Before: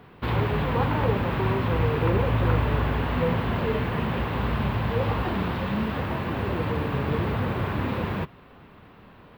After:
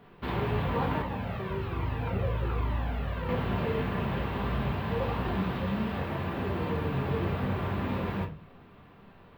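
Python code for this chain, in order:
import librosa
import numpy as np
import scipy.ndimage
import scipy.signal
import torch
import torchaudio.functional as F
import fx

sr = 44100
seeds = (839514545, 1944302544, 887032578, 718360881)

y = fx.room_shoebox(x, sr, seeds[0], volume_m3=180.0, walls='furnished', distance_m=1.2)
y = fx.comb_cascade(y, sr, direction='falling', hz=1.2, at=(1.02, 3.29))
y = y * librosa.db_to_amplitude(-7.0)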